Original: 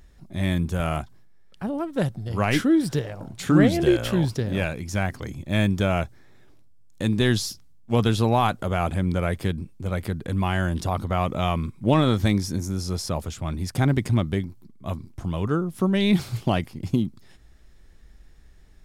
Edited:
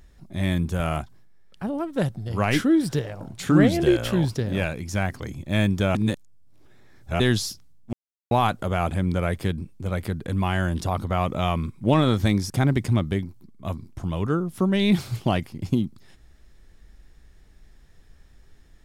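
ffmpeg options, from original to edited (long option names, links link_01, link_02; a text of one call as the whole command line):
ffmpeg -i in.wav -filter_complex "[0:a]asplit=6[link_01][link_02][link_03][link_04][link_05][link_06];[link_01]atrim=end=5.952[link_07];[link_02]atrim=start=5.948:end=7.202,asetpts=PTS-STARTPTS,areverse[link_08];[link_03]atrim=start=7.198:end=7.93,asetpts=PTS-STARTPTS,afade=type=out:start_time=0.728:duration=0.004:curve=hsin[link_09];[link_04]atrim=start=7.93:end=8.31,asetpts=PTS-STARTPTS,volume=0[link_10];[link_05]atrim=start=8.31:end=12.502,asetpts=PTS-STARTPTS,afade=type=in:duration=0.004:curve=hsin[link_11];[link_06]atrim=start=13.708[link_12];[link_07][link_08]acrossfade=duration=0.004:curve1=hsin:curve2=hsin[link_13];[link_09][link_10][link_11]concat=n=3:v=0:a=1[link_14];[link_13][link_14]acrossfade=duration=0.004:curve1=hsin:curve2=hsin[link_15];[link_15][link_12]acrossfade=duration=0.004:curve1=hsin:curve2=hsin" out.wav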